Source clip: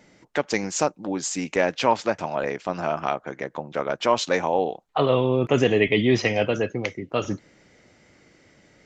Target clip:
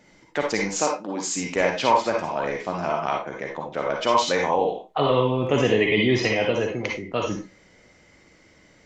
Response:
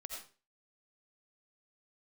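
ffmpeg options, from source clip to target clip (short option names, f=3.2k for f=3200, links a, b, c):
-filter_complex "[0:a]asettb=1/sr,asplit=3[a][b][c];[a]atrim=end=0.694[d];[b]atrim=start=0.69:end=1.3,asetpts=PTS-STARTPTS,afade=t=in:d=0.004:c=qsin,afade=t=out:st=0.606:d=0.004:c=qsin,highpass=200[e];[c]atrim=start=1.296[f];[d][e]acrossfade=d=0.004:c1=hsin:c2=qsin[g];[g][f]acrossfade=d=0.004:c1=qsin:c2=hsin[h];[1:a]atrim=start_sample=2205,asetrate=70560,aresample=44100[i];[h][i]afir=irnorm=-1:irlink=0,volume=8.5dB"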